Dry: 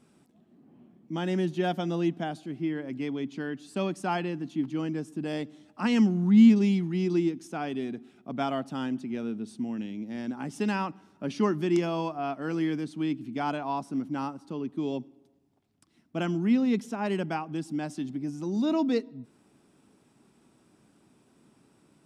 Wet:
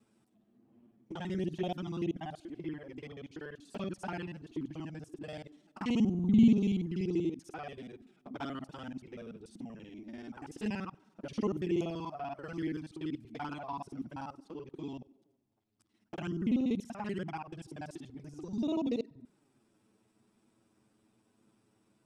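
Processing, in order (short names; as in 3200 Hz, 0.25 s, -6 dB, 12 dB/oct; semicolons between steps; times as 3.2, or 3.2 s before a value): local time reversal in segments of 48 ms; envelope flanger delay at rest 9.7 ms, full sweep at -23 dBFS; gain -5.5 dB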